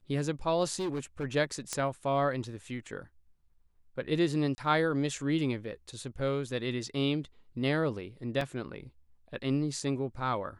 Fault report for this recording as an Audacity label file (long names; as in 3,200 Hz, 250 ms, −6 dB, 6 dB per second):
0.790000	1.250000	clipping −29.5 dBFS
1.730000	1.730000	click −17 dBFS
4.550000	4.580000	drop-out 30 ms
8.410000	8.410000	drop-out 2.8 ms